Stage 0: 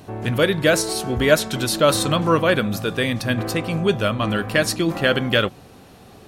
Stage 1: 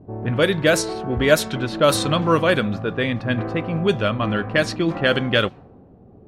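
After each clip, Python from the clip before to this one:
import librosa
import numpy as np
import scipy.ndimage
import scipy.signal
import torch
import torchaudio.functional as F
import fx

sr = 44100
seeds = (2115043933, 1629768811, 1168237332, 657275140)

y = fx.env_lowpass(x, sr, base_hz=420.0, full_db=-12.0)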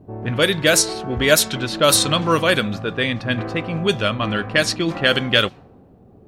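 y = fx.high_shelf(x, sr, hz=2700.0, db=12.0)
y = F.gain(torch.from_numpy(y), -1.0).numpy()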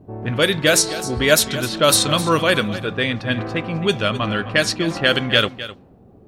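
y = x + 10.0 ** (-14.5 / 20.0) * np.pad(x, (int(259 * sr / 1000.0), 0))[:len(x)]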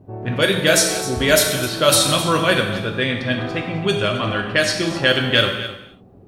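y = fx.rev_gated(x, sr, seeds[0], gate_ms=310, shape='falling', drr_db=2.5)
y = F.gain(torch.from_numpy(y), -1.5).numpy()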